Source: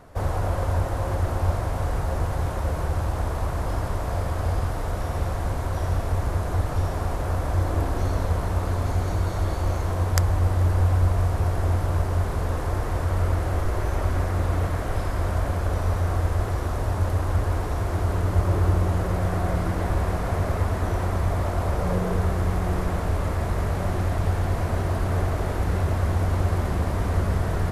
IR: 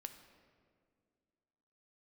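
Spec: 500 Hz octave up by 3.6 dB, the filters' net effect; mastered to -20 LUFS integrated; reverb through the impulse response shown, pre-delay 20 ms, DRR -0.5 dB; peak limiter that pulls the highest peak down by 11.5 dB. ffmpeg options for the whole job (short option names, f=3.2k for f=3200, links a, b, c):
-filter_complex "[0:a]equalizer=f=500:t=o:g=4.5,alimiter=limit=-15dB:level=0:latency=1,asplit=2[a][b];[1:a]atrim=start_sample=2205,adelay=20[c];[b][c]afir=irnorm=-1:irlink=0,volume=5dB[d];[a][d]amix=inputs=2:normalize=0,volume=2.5dB"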